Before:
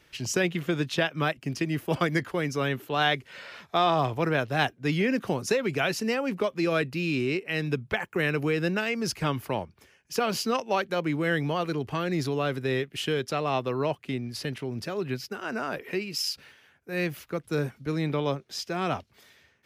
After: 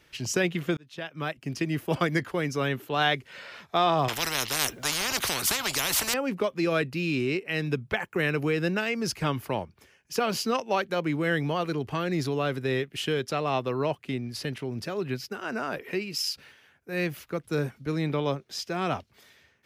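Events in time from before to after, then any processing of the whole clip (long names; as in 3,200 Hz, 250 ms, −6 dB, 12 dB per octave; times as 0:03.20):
0:00.77–0:01.65: fade in
0:04.08–0:06.14: every bin compressed towards the loudest bin 10 to 1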